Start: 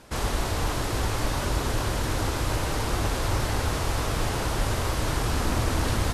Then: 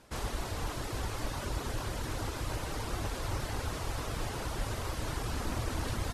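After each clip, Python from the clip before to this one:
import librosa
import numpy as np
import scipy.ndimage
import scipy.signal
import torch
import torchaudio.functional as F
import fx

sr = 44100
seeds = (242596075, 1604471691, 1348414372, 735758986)

y = fx.dereverb_blind(x, sr, rt60_s=0.53)
y = y * librosa.db_to_amplitude(-8.0)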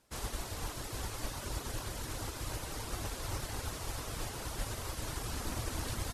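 y = fx.high_shelf(x, sr, hz=4700.0, db=9.0)
y = fx.upward_expand(y, sr, threshold_db=-51.0, expansion=1.5)
y = y * librosa.db_to_amplitude(-2.5)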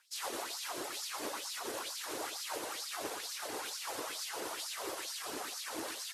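y = fx.rider(x, sr, range_db=10, speed_s=0.5)
y = fx.filter_lfo_highpass(y, sr, shape='sine', hz=2.2, low_hz=340.0, high_hz=5000.0, q=2.7)
y = y + 10.0 ** (-10.0 / 20.0) * np.pad(y, (int(117 * sr / 1000.0), 0))[:len(y)]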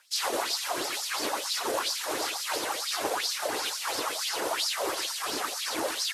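y = fx.bell_lfo(x, sr, hz=2.9, low_hz=540.0, high_hz=5200.0, db=9)
y = y * librosa.db_to_amplitude(7.5)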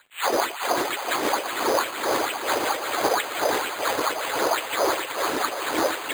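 y = fx.dmg_crackle(x, sr, seeds[0], per_s=150.0, level_db=-53.0)
y = fx.echo_feedback(y, sr, ms=374, feedback_pct=55, wet_db=-7.0)
y = np.repeat(scipy.signal.resample_poly(y, 1, 8), 8)[:len(y)]
y = y * librosa.db_to_amplitude(8.0)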